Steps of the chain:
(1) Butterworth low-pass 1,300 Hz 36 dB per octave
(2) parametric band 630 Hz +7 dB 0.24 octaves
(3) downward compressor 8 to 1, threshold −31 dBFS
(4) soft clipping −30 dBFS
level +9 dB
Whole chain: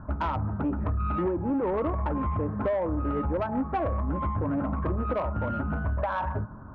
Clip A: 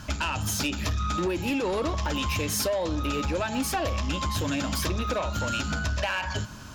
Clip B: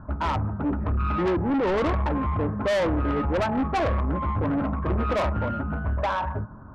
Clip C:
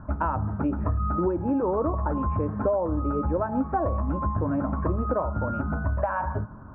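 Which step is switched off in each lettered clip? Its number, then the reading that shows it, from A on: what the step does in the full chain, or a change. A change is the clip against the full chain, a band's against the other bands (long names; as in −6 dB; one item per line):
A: 1, 2 kHz band +9.5 dB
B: 3, average gain reduction 6.0 dB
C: 4, distortion level −16 dB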